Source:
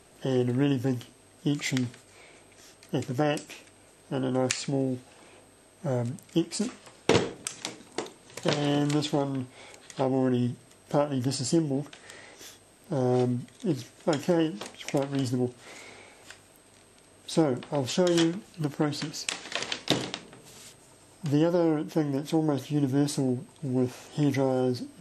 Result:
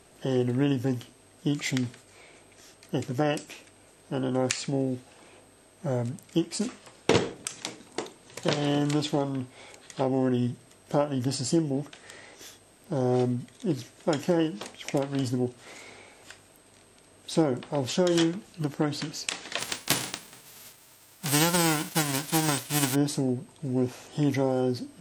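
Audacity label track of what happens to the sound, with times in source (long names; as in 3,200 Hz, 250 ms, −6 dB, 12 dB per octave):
19.580000	22.940000	spectral envelope flattened exponent 0.3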